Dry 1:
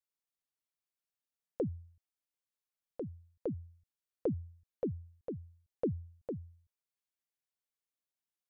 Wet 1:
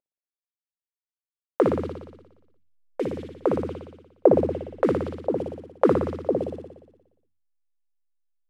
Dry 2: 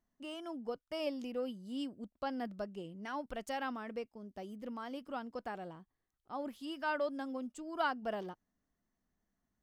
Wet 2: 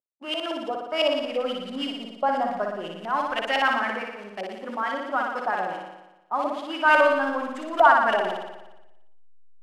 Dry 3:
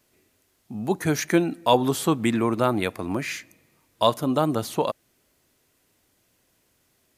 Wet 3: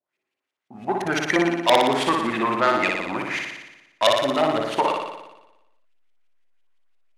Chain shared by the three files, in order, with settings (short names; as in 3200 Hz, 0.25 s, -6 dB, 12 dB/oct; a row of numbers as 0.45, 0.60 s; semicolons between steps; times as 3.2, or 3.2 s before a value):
CVSD 64 kbps; notch 470 Hz, Q 12; gate -53 dBFS, range -20 dB; high shelf 8900 Hz +8.5 dB; notches 50/100/150/200/250/300 Hz; in parallel at -6 dB: backlash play -21.5 dBFS; on the sum: LFO low-pass saw up 5.9 Hz 560–3200 Hz; soft clip -10 dBFS; RIAA curve recording; on a send: flutter echo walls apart 10.1 m, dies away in 1 s; on the sum: normalise peaks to -3 dBFS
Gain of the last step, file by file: +18.0, +12.0, 0.0 dB